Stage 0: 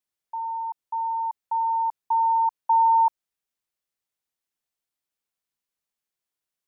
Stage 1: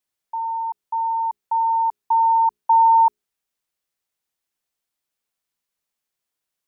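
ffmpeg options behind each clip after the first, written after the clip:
-af "bandreject=f=60:t=h:w=6,bandreject=f=120:t=h:w=6,bandreject=f=180:t=h:w=6,bandreject=f=240:t=h:w=6,bandreject=f=300:t=h:w=6,bandreject=f=360:t=h:w=6,bandreject=f=420:t=h:w=6,volume=4.5dB"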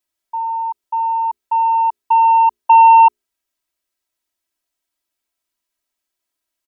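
-af "aecho=1:1:3.1:0.96,aeval=exprs='0.501*(cos(1*acos(clip(val(0)/0.501,-1,1)))-cos(1*PI/2))+0.0447*(cos(3*acos(clip(val(0)/0.501,-1,1)))-cos(3*PI/2))':c=same,volume=2.5dB"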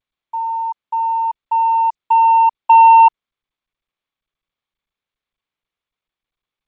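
-af "acrusher=bits=9:mix=0:aa=0.000001" -ar 16000 -c:a g722

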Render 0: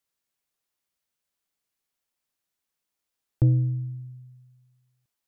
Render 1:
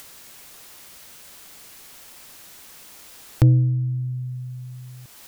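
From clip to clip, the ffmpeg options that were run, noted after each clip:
-af "acompressor=mode=upward:threshold=-23dB:ratio=2.5,volume=5dB"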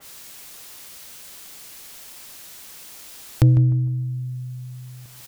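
-filter_complex "[0:a]asplit=2[a][b];[b]adelay=152,lowpass=f=1.2k:p=1,volume=-10dB,asplit=2[c][d];[d]adelay=152,lowpass=f=1.2k:p=1,volume=0.36,asplit=2[e][f];[f]adelay=152,lowpass=f=1.2k:p=1,volume=0.36,asplit=2[g][h];[h]adelay=152,lowpass=f=1.2k:p=1,volume=0.36[i];[c][e][g][i]amix=inputs=4:normalize=0[j];[a][j]amix=inputs=2:normalize=0,adynamicequalizer=threshold=0.00224:dfrequency=2400:dqfactor=0.7:tfrequency=2400:tqfactor=0.7:attack=5:release=100:ratio=0.375:range=3:mode=boostabove:tftype=highshelf"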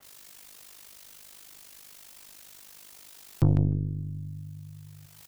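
-af "aeval=exprs='val(0)*sin(2*PI*25*n/s)':c=same,aeval=exprs='0.501*(cos(1*acos(clip(val(0)/0.501,-1,1)))-cos(1*PI/2))+0.0562*(cos(6*acos(clip(val(0)/0.501,-1,1)))-cos(6*PI/2))+0.01*(cos(7*acos(clip(val(0)/0.501,-1,1)))-cos(7*PI/2))':c=same,volume=-4.5dB"

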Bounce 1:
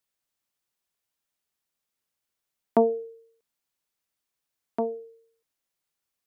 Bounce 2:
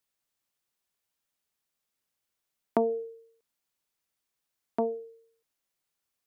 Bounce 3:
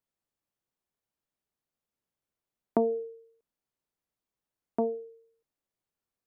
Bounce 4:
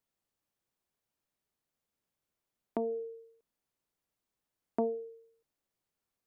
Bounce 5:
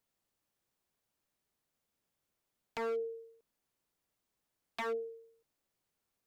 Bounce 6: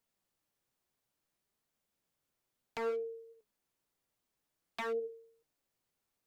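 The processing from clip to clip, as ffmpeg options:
-af "acompressor=threshold=-22dB:ratio=6"
-af "tiltshelf=f=1.2k:g=6.5,volume=-4.5dB"
-filter_complex "[0:a]asplit=2[a][b];[b]acompressor=threshold=-35dB:ratio=6,volume=-1.5dB[c];[a][c]amix=inputs=2:normalize=0,alimiter=limit=-16.5dB:level=0:latency=1:release=436,volume=-3.5dB"
-af "aeval=exprs='0.0211*(abs(mod(val(0)/0.0211+3,4)-2)-1)':c=same,volume=2.5dB"
-af "flanger=delay=4.2:depth=4.2:regen=80:speed=0.6:shape=triangular,volume=4dB"

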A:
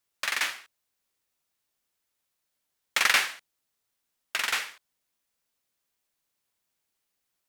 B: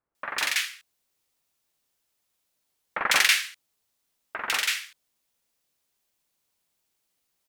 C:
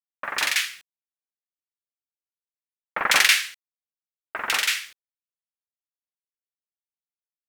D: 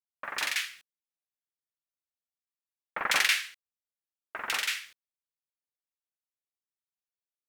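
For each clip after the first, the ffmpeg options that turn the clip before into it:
-filter_complex "[0:a]acrossover=split=1600[a][b];[b]adelay=150[c];[a][c]amix=inputs=2:normalize=0,volume=4dB"
-af "acrusher=bits=8:mix=0:aa=0.5,volume=3dB"
-af "adynamicequalizer=threshold=0.0224:dfrequency=4200:dqfactor=0.7:tfrequency=4200:tqfactor=0.7:attack=5:release=100:ratio=0.375:range=3:mode=cutabove:tftype=highshelf,volume=-7dB"

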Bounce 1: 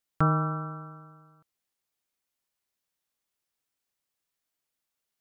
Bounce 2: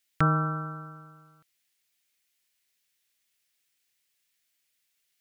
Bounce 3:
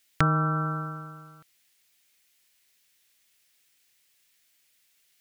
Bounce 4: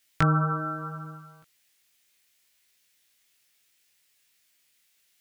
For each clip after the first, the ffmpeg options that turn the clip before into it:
-af "highshelf=f=1.5k:t=q:w=1.5:g=9"
-af "acompressor=threshold=-32dB:ratio=2.5,volume=8.5dB"
-af "flanger=delay=17.5:depth=4.7:speed=0.72,volume=2.5dB"

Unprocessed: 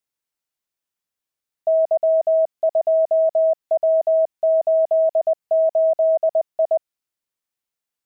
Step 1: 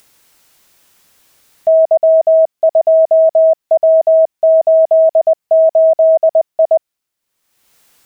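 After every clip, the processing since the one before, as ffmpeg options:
-af "acompressor=mode=upward:threshold=-40dB:ratio=2.5,volume=8dB"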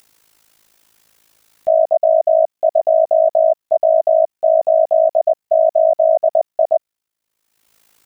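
-af "tremolo=f=54:d=0.889"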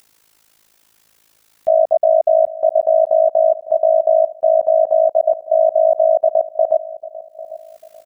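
-filter_complex "[0:a]asplit=2[a][b];[b]adelay=796,lowpass=f=850:p=1,volume=-14.5dB,asplit=2[c][d];[d]adelay=796,lowpass=f=850:p=1,volume=0.4,asplit=2[e][f];[f]adelay=796,lowpass=f=850:p=1,volume=0.4,asplit=2[g][h];[h]adelay=796,lowpass=f=850:p=1,volume=0.4[i];[a][c][e][g][i]amix=inputs=5:normalize=0"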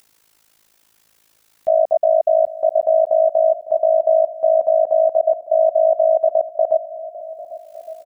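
-af "aecho=1:1:1160|2320|3480:0.119|0.0511|0.022,volume=-2dB"

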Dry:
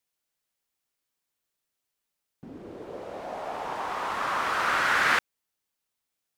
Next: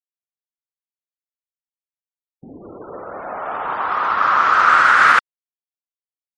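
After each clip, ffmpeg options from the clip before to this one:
-af "afftfilt=real='re*gte(hypot(re,im),0.00631)':imag='im*gte(hypot(re,im),0.00631)':win_size=1024:overlap=0.75,equalizer=f=1.3k:t=o:w=0.68:g=12.5,alimiter=level_in=5.5dB:limit=-1dB:release=50:level=0:latency=1,volume=-1dB"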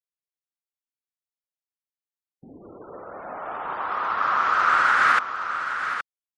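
-af "aecho=1:1:819:0.355,volume=-7dB"

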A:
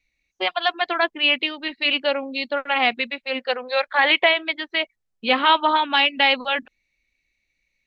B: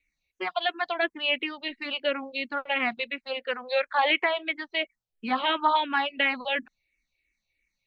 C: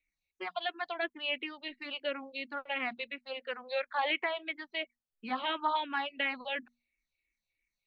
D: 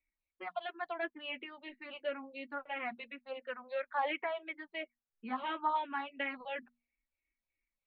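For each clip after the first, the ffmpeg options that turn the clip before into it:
-filter_complex "[0:a]acrossover=split=2600[a][b];[b]acompressor=threshold=-28dB:ratio=4:attack=1:release=60[c];[a][c]amix=inputs=2:normalize=0,asplit=2[d][e];[e]afreqshift=-2.9[f];[d][f]amix=inputs=2:normalize=1,volume=-2dB"
-af "bandreject=f=60:t=h:w=6,bandreject=f=120:t=h:w=6,bandreject=f=180:t=h:w=6,bandreject=f=240:t=h:w=6,volume=-8dB"
-af "lowpass=2.1k,flanger=delay=3.1:depth=5.7:regen=-29:speed=0.27:shape=sinusoidal,volume=1dB"

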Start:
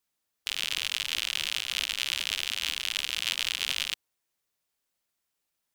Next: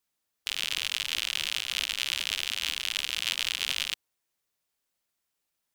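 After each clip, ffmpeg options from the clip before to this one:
-af anull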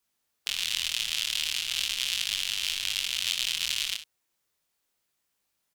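-filter_complex "[0:a]acrossover=split=180|3000[a][b][c];[b]acompressor=threshold=-39dB:ratio=6[d];[a][d][c]amix=inputs=3:normalize=0,flanger=delay=20:depth=6.6:speed=0.38,aecho=1:1:62|74:0.237|0.15,volume=6.5dB"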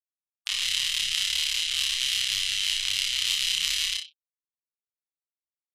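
-filter_complex "[0:a]afftfilt=real='re*gte(hypot(re,im),0.00794)':imag='im*gte(hypot(re,im),0.00794)':win_size=1024:overlap=0.75,asplit=2[a][b];[b]adelay=31,volume=-3dB[c];[a][c]amix=inputs=2:normalize=0,aecho=1:1:30|60:0.596|0.224"

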